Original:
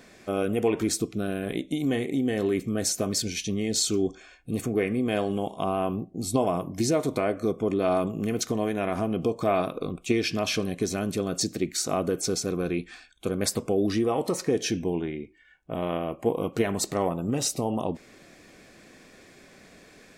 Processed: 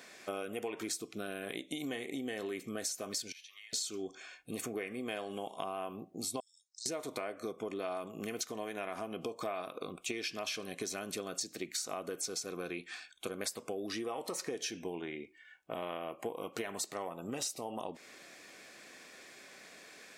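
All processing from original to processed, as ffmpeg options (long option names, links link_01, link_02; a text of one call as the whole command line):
ffmpeg -i in.wav -filter_complex "[0:a]asettb=1/sr,asplit=3[link_01][link_02][link_03];[link_01]atrim=end=3.324[link_04];[link_02]atrim=start=3.32:end=3.73,asetpts=PTS-STARTPTS,afade=type=in:duration=0.004:curve=qsin,afade=type=out:start_time=0.406:duration=0.004:curve=qsin,highpass=frequency=1300:width=0.5412,highpass=frequency=1300:width=1.3066,equalizer=frequency=7700:width=1.1:gain=-12,acompressor=threshold=-49dB:ratio=8:attack=3.2:release=140:knee=1:detection=peak[link_05];[link_03]atrim=start=3.726[link_06];[link_04][link_05]acrossfade=duration=0.004:curve1=hsin:curve2=qsin[link_07];[link_07][link_06]acrossfade=duration=0.004:curve1=qsin:curve2=hsin,asettb=1/sr,asplit=3[link_08][link_09][link_10];[link_08]atrim=end=6.404[link_11];[link_09]atrim=start=6.4:end=6.86,asetpts=PTS-STARTPTS,afade=type=in:duration=0.004:curve=qsin,afade=type=out:start_time=0.456:duration=0.004:curve=qsin,deesser=0.95,asuperpass=centerf=5900:order=20:qfactor=1.2[link_12];[link_10]atrim=start=6.856[link_13];[link_11][link_12]acrossfade=duration=0.004:curve1=hsin:curve2=qsin[link_14];[link_14][link_13]acrossfade=duration=0.004:curve1=qsin:curve2=hsin,highpass=frequency=900:poles=1,acompressor=threshold=-37dB:ratio=6,volume=1.5dB" out.wav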